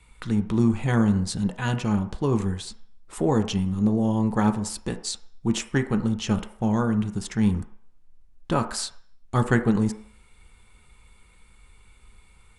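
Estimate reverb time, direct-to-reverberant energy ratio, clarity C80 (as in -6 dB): 0.60 s, 6.5 dB, 15.5 dB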